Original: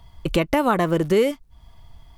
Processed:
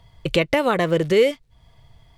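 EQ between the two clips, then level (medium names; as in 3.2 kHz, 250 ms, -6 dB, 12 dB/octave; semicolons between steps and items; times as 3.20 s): graphic EQ 125/500/2000/4000/8000 Hz +11/+11/+8/+5/+5 dB; dynamic bell 3.5 kHz, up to +6 dB, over -40 dBFS, Q 0.75; -8.0 dB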